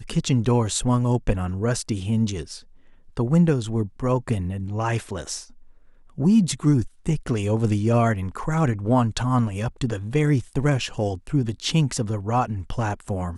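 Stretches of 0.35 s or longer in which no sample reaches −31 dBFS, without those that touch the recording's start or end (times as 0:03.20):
0:02.56–0:03.17
0:05.42–0:06.18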